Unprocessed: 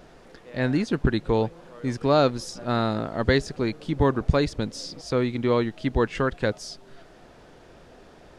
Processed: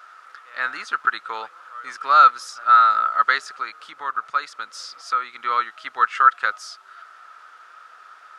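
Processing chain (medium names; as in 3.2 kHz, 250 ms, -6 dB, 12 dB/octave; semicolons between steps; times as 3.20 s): 3.53–5.40 s: compression 2:1, threshold -26 dBFS, peak gain reduction 7.5 dB; resonant high-pass 1.3 kHz, resonance Q 13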